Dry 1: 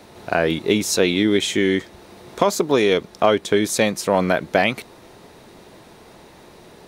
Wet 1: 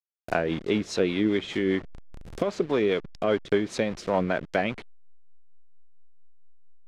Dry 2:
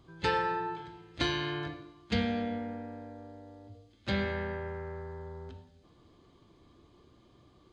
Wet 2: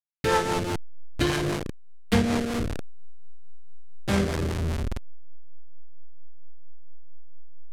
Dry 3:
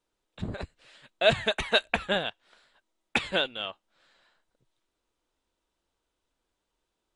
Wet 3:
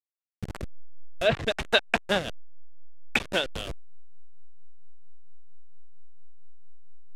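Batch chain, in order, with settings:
hold until the input has moved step −28 dBFS
treble cut that deepens with the level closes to 2,900 Hz, closed at −16 dBFS
rotating-speaker cabinet horn 5 Hz
loudness normalisation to −27 LKFS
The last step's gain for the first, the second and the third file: −5.0, +9.0, +3.0 decibels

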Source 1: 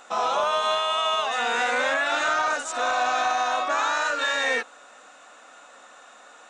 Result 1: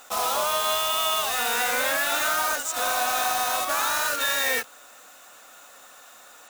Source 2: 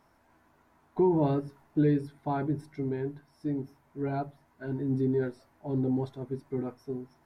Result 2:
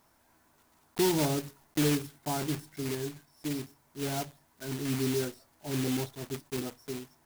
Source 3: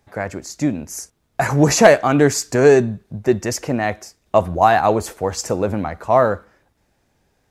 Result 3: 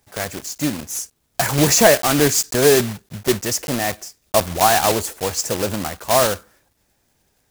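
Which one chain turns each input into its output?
one scale factor per block 3 bits
high-shelf EQ 4,000 Hz +9 dB
level −3 dB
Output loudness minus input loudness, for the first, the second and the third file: +0.5, −1.5, −1.0 LU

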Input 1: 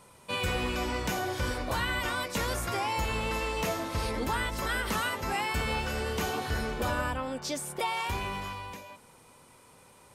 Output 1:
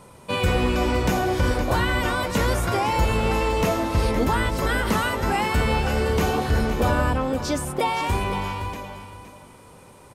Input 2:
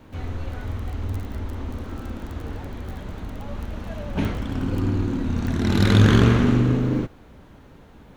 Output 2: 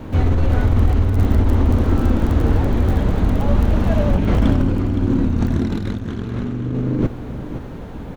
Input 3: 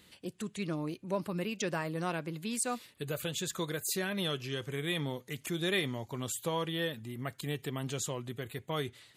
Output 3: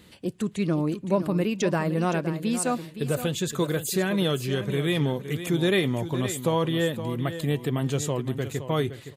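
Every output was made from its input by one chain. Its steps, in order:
tilt shelving filter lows +4 dB
compressor whose output falls as the input rises −25 dBFS, ratio −1
on a send: repeating echo 516 ms, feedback 20%, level −11 dB
on the sum: level +7.5 dB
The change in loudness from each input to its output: +8.5, +4.0, +9.0 LU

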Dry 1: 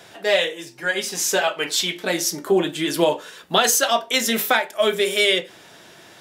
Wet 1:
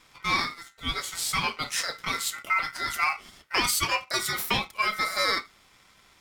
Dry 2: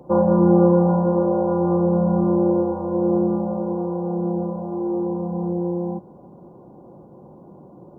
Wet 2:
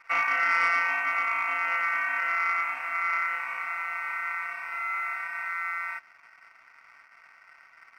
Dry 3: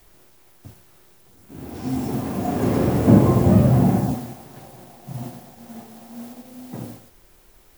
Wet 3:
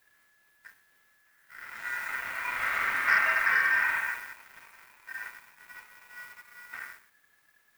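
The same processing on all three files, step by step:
dynamic equaliser 210 Hz, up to −6 dB, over −31 dBFS, Q 2.2
ring modulation 1,700 Hz
leveller curve on the samples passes 1
loudness normalisation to −27 LKFS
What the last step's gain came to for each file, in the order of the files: −8.0, −8.0, −9.0 decibels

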